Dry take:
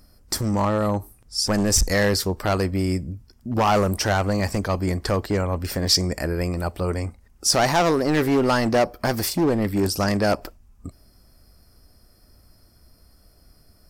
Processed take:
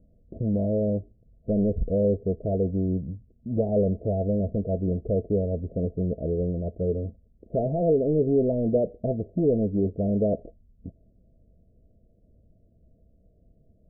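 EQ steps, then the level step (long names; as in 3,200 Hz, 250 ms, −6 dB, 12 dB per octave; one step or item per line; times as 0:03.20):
Chebyshev low-pass with heavy ripple 680 Hz, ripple 6 dB
dynamic equaliser 430 Hz, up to +6 dB, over −42 dBFS, Q 6.8
0.0 dB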